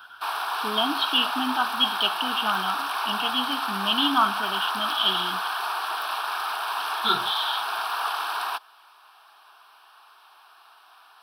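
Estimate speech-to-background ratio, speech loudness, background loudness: 2.5 dB, −25.5 LKFS, −28.0 LKFS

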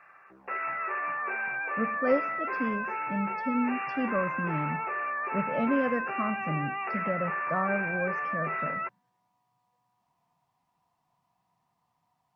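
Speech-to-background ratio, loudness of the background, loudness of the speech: −0.5 dB, −32.0 LKFS, −32.5 LKFS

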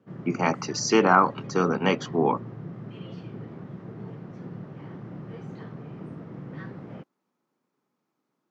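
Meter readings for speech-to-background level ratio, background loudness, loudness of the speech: 16.0 dB, −40.0 LKFS, −24.0 LKFS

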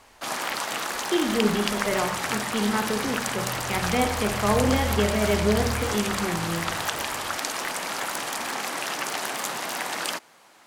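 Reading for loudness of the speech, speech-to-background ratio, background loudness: −26.5 LKFS, 2.0 dB, −28.5 LKFS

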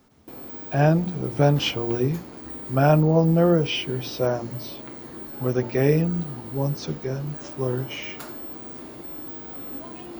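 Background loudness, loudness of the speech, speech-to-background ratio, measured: −36.0 LKFS, −23.0 LKFS, 13.0 dB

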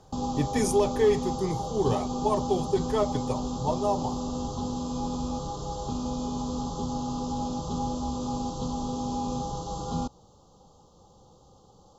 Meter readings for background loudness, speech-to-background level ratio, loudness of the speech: −32.0 LKFS, 3.5 dB, −28.5 LKFS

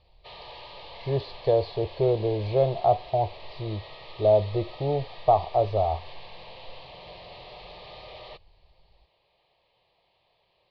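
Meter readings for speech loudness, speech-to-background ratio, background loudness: −26.0 LKFS, 18.5 dB, −44.5 LKFS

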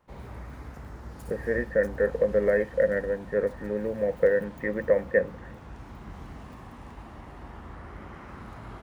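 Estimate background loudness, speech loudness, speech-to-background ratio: −44.0 LKFS, −26.5 LKFS, 17.5 dB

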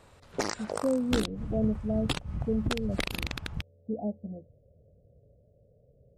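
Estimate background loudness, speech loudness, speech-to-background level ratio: −35.0 LKFS, −33.0 LKFS, 2.0 dB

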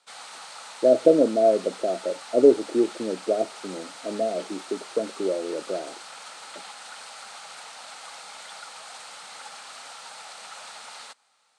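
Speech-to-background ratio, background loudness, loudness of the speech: 17.0 dB, −40.5 LKFS, −23.5 LKFS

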